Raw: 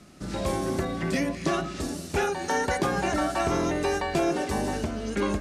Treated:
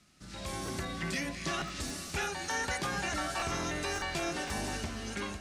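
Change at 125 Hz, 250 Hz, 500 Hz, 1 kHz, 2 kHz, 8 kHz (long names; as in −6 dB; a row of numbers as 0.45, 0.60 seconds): −8.0, −11.0, −12.5, −8.0, −3.0, −1.5 decibels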